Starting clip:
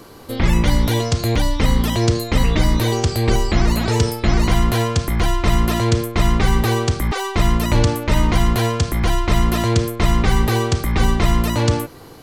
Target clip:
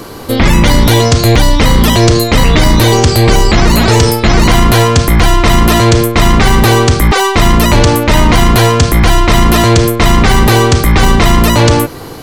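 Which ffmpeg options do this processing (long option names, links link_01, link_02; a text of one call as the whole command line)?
ffmpeg -i in.wav -af "apsyclip=16dB,volume=-2dB" out.wav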